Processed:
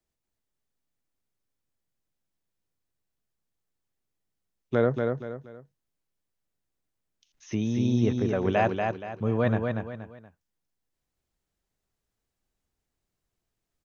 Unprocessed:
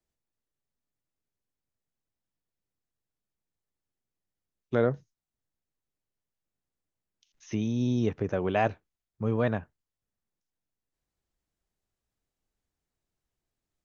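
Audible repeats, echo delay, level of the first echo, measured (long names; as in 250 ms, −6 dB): 3, 237 ms, −4.5 dB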